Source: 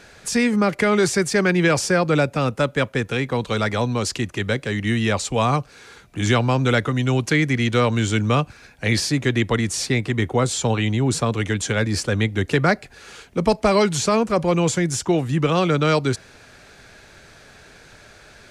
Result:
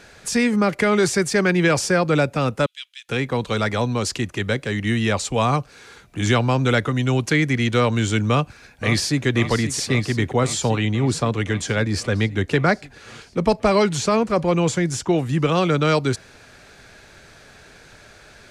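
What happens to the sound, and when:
2.66–3.09 s: ladder high-pass 2.8 kHz, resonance 55%
8.28–9.26 s: echo throw 530 ms, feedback 75%, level -10.5 dB
10.78–15.16 s: treble shelf 7.5 kHz -6.5 dB

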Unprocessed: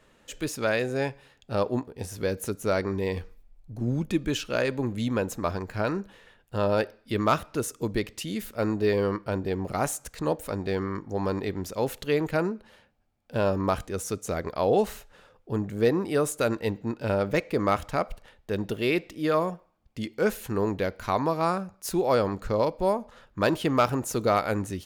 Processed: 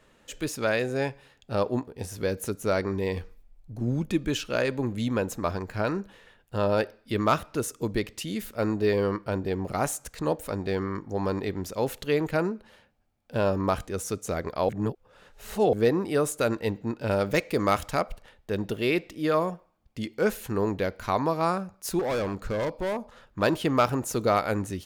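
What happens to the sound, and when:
14.69–15.73 s: reverse
17.11–18.01 s: treble shelf 3.5 kHz +8 dB
21.99–23.42 s: hard clipper -25 dBFS

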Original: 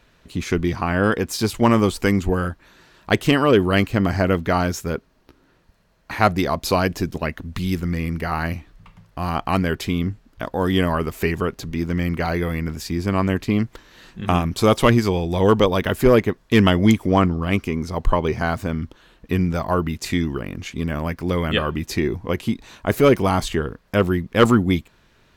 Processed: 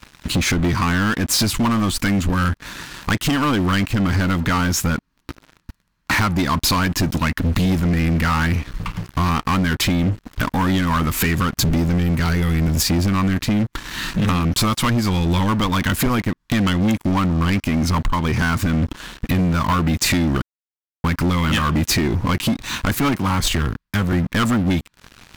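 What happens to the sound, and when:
11.57–12.83 s: tone controls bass +6 dB, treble +8 dB
20.42–21.04 s: mute
22.99–24.13 s: three bands expanded up and down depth 100%
whole clip: high-order bell 540 Hz -13.5 dB 1.2 oct; compression 16:1, threshold -30 dBFS; waveshaping leveller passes 5; trim +2.5 dB

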